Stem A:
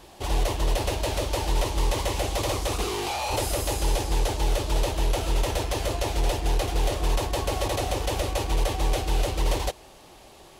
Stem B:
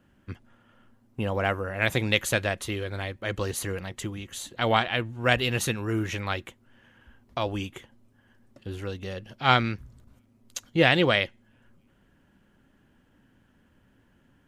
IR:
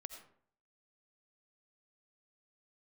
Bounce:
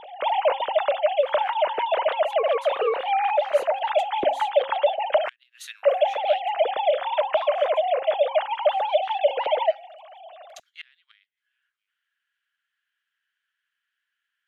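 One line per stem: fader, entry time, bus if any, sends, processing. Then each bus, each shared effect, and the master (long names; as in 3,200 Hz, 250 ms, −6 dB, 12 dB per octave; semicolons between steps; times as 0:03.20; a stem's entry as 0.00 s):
+2.0 dB, 0.00 s, muted 0:05.29–0:05.83, no send, three sine waves on the formant tracks; parametric band 420 Hz +3.5 dB 0.67 octaves; hum removal 271.8 Hz, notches 11
−5.0 dB, 0.00 s, no send, Butterworth high-pass 1,500 Hz 36 dB per octave; gate with flip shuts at −15 dBFS, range −30 dB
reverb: not used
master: parametric band 3,700 Hz +5.5 dB 0.71 octaves; speech leveller 0.5 s; high-shelf EQ 2,400 Hz −10.5 dB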